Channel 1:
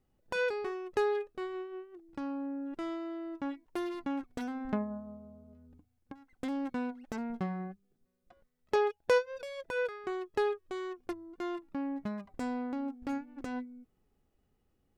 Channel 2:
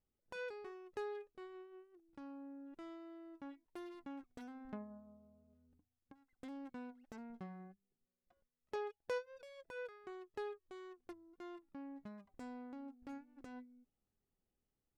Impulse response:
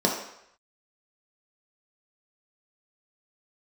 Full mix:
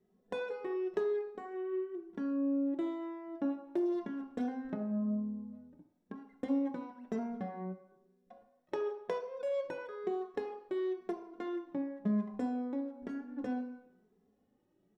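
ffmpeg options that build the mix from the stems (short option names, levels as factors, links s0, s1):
-filter_complex "[0:a]lowpass=f=3700:p=1,acompressor=threshold=0.0112:ratio=6,asplit=2[s0][s1];[s1]adelay=2.6,afreqshift=1[s2];[s0][s2]amix=inputs=2:normalize=1,volume=0.708,asplit=2[s3][s4];[s4]volume=0.355[s5];[1:a]volume=0.398[s6];[2:a]atrim=start_sample=2205[s7];[s5][s7]afir=irnorm=-1:irlink=0[s8];[s3][s6][s8]amix=inputs=3:normalize=0"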